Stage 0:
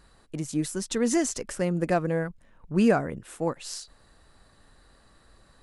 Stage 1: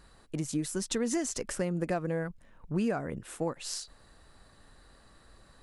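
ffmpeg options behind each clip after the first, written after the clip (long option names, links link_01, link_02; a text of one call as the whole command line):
ffmpeg -i in.wav -af "acompressor=threshold=-28dB:ratio=4" out.wav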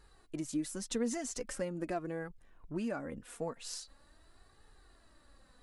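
ffmpeg -i in.wav -af "flanger=delay=2.3:depth=2.2:regen=27:speed=0.43:shape=triangular,volume=-2dB" out.wav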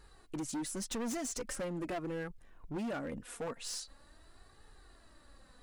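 ffmpeg -i in.wav -af "asoftclip=type=hard:threshold=-37.5dB,volume=3dB" out.wav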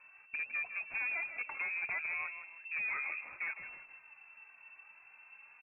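ffmpeg -i in.wav -filter_complex "[0:a]lowpass=frequency=2300:width_type=q:width=0.5098,lowpass=frequency=2300:width_type=q:width=0.6013,lowpass=frequency=2300:width_type=q:width=0.9,lowpass=frequency=2300:width_type=q:width=2.563,afreqshift=-2700,asplit=5[link_01][link_02][link_03][link_04][link_05];[link_02]adelay=159,afreqshift=-38,volume=-10.5dB[link_06];[link_03]adelay=318,afreqshift=-76,volume=-19.9dB[link_07];[link_04]adelay=477,afreqshift=-114,volume=-29.2dB[link_08];[link_05]adelay=636,afreqshift=-152,volume=-38.6dB[link_09];[link_01][link_06][link_07][link_08][link_09]amix=inputs=5:normalize=0" out.wav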